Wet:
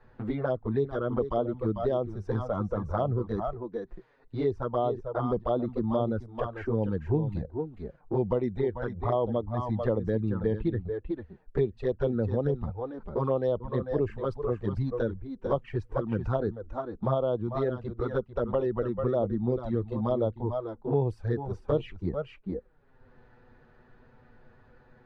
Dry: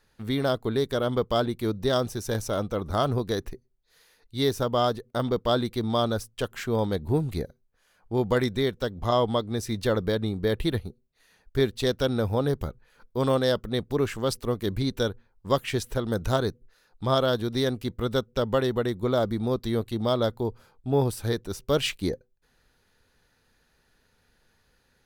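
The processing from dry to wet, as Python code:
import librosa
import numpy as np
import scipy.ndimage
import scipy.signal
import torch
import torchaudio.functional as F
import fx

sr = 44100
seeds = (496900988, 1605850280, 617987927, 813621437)

y = x + 10.0 ** (-8.0 / 20.0) * np.pad(x, (int(445 * sr / 1000.0), 0))[:len(x)]
y = fx.noise_reduce_blind(y, sr, reduce_db=7)
y = fx.env_flanger(y, sr, rest_ms=8.2, full_db=-20.0)
y = scipy.signal.sosfilt(scipy.signal.butter(2, 1200.0, 'lowpass', fs=sr, output='sos'), y)
y = fx.band_squash(y, sr, depth_pct=70)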